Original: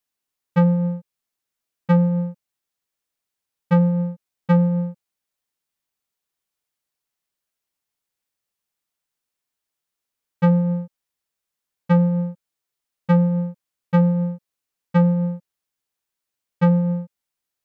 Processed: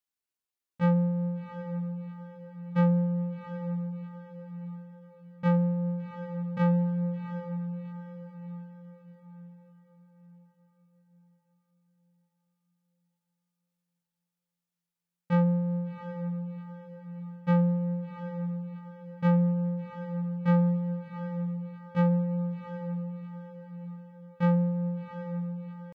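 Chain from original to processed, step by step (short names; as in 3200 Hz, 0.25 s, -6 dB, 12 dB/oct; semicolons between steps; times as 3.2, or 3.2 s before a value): tempo 0.68×; diffused feedback echo 0.736 s, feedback 46%, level -9 dB; gain -8.5 dB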